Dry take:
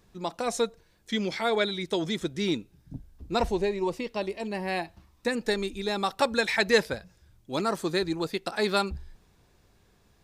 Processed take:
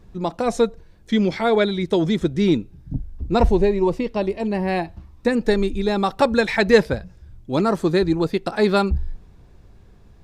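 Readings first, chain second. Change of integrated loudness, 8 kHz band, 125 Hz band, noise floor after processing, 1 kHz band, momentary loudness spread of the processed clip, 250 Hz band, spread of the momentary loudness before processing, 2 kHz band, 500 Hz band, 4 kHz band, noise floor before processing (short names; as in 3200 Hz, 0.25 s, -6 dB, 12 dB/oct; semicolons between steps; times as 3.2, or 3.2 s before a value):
+8.0 dB, n/a, +13.0 dB, -49 dBFS, +6.5 dB, 10 LU, +11.0 dB, 11 LU, +4.0 dB, +9.0 dB, +1.0 dB, -63 dBFS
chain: tilt -2.5 dB/oct; gain +6 dB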